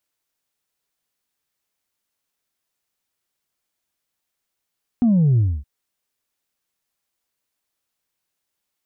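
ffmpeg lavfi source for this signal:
-f lavfi -i "aevalsrc='0.224*clip((0.62-t)/0.26,0,1)*tanh(1.12*sin(2*PI*250*0.62/log(65/250)*(exp(log(65/250)*t/0.62)-1)))/tanh(1.12)':d=0.62:s=44100"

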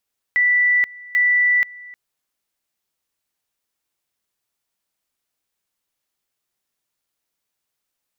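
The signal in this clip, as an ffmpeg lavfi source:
-f lavfi -i "aevalsrc='pow(10,(-13-22.5*gte(mod(t,0.79),0.48))/20)*sin(2*PI*1970*t)':d=1.58:s=44100"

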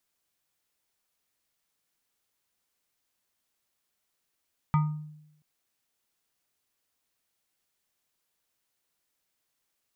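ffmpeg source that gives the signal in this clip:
-f lavfi -i "aevalsrc='0.126*pow(10,-3*t/0.85)*sin(2*PI*152*t+0.72*pow(10,-3*t/0.59)*sin(2*PI*7.1*152*t))':d=0.68:s=44100"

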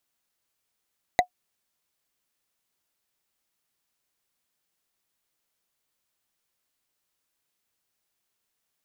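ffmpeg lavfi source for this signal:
-f lavfi -i "aevalsrc='0.316*pow(10,-3*t/0.09)*sin(2*PI*725*t)+0.2*pow(10,-3*t/0.027)*sin(2*PI*1998.8*t)+0.126*pow(10,-3*t/0.012)*sin(2*PI*3917.9*t)+0.0794*pow(10,-3*t/0.007)*sin(2*PI*6476.4*t)+0.0501*pow(10,-3*t/0.004)*sin(2*PI*9671.5*t)':d=0.45:s=44100"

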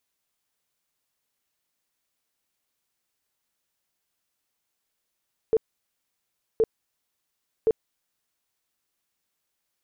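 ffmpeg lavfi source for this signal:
-f lavfi -i "aevalsrc='0.158*sin(2*PI*445*mod(t,1.07))*lt(mod(t,1.07),17/445)':d=3.21:s=44100"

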